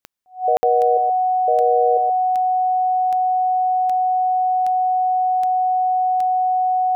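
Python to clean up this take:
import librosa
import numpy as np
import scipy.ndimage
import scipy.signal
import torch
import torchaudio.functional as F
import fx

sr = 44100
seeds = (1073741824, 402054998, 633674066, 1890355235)

y = fx.fix_declick_ar(x, sr, threshold=10.0)
y = fx.notch(y, sr, hz=740.0, q=30.0)
y = fx.fix_ambience(y, sr, seeds[0], print_start_s=3.5, print_end_s=4.0, start_s=0.57, end_s=0.63)
y = fx.fix_echo_inverse(y, sr, delay_ms=125, level_db=-8.0)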